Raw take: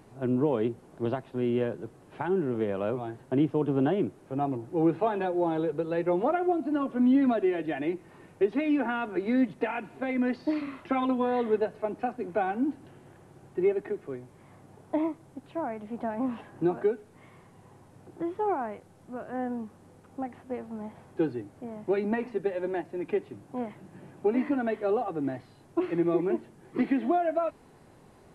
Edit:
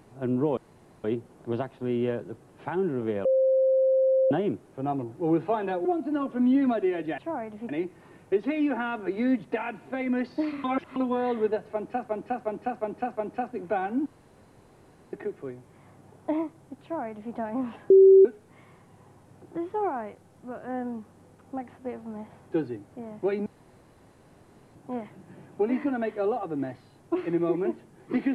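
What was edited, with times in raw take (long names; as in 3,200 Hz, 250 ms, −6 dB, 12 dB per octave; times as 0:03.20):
0:00.57: splice in room tone 0.47 s
0:02.78–0:03.84: beep over 527 Hz −18.5 dBFS
0:05.38–0:06.45: remove
0:10.73–0:11.05: reverse
0:11.82–0:12.18: repeat, 5 plays
0:12.71–0:13.78: fill with room tone
0:15.47–0:15.98: duplicate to 0:07.78
0:16.55–0:16.90: beep over 385 Hz −10.5 dBFS
0:22.11–0:23.40: fill with room tone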